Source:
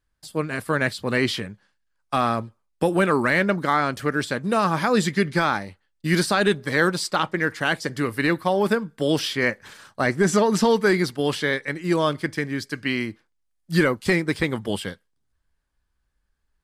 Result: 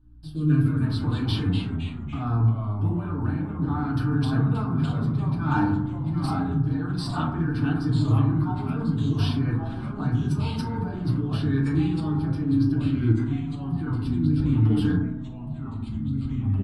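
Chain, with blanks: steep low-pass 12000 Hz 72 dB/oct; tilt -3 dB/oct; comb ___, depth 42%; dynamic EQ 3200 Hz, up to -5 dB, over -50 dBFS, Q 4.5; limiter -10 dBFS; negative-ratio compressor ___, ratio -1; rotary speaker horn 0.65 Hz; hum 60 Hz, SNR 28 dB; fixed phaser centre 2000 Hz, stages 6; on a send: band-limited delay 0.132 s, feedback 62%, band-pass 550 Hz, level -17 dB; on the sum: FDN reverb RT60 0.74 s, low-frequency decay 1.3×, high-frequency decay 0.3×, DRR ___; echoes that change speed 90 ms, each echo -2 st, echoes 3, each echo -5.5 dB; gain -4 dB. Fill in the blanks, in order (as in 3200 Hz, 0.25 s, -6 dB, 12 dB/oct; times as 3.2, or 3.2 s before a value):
6.7 ms, -26 dBFS, -4.5 dB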